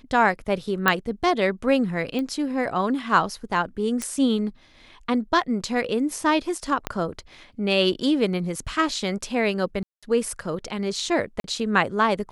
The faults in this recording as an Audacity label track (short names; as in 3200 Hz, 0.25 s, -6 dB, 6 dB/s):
0.880000	0.880000	pop -4 dBFS
2.190000	2.190000	pop -17 dBFS
4.020000	4.020000	pop -14 dBFS
6.870000	6.870000	pop -10 dBFS
9.830000	10.030000	gap 0.196 s
11.400000	11.440000	gap 42 ms